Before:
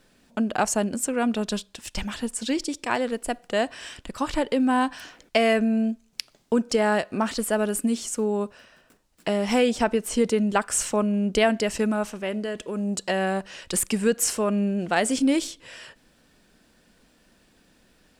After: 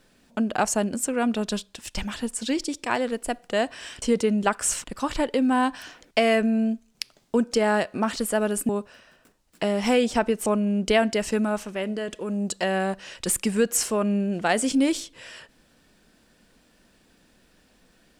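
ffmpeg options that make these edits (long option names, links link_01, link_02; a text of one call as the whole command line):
ffmpeg -i in.wav -filter_complex "[0:a]asplit=5[link_01][link_02][link_03][link_04][link_05];[link_01]atrim=end=4.022[link_06];[link_02]atrim=start=10.108:end=10.932[link_07];[link_03]atrim=start=4.018:end=7.872[link_08];[link_04]atrim=start=8.338:end=10.112[link_09];[link_05]atrim=start=10.928[link_10];[link_06][link_07]acrossfade=duration=0.004:curve1=hsin:curve2=hsin[link_11];[link_11][link_08]acrossfade=duration=0.004:curve1=hsin:curve2=hsin[link_12];[link_12][link_09]acrossfade=duration=0.004:curve1=hsin:curve2=hsin[link_13];[link_13][link_10]acrossfade=duration=0.004:curve1=hsin:curve2=hsin" out.wav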